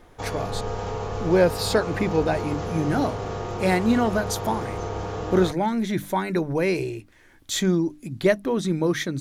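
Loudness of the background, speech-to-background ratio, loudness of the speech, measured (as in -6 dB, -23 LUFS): -31.0 LUFS, 6.5 dB, -24.5 LUFS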